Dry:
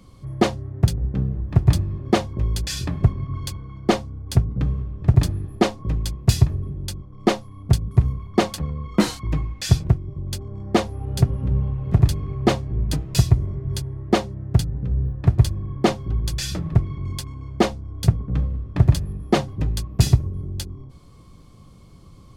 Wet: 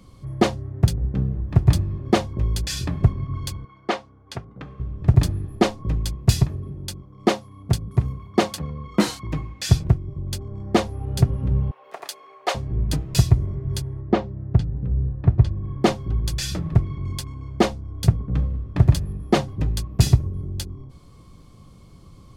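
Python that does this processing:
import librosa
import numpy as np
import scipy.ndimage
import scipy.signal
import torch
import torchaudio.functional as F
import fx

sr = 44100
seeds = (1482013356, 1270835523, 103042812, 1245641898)

y = fx.bandpass_q(x, sr, hz=1500.0, q=0.57, at=(3.65, 4.8))
y = fx.highpass(y, sr, hz=120.0, slope=6, at=(6.42, 9.71))
y = fx.highpass(y, sr, hz=570.0, slope=24, at=(11.71, 12.55))
y = fx.spacing_loss(y, sr, db_at_10k=27, at=(14.01, 15.64))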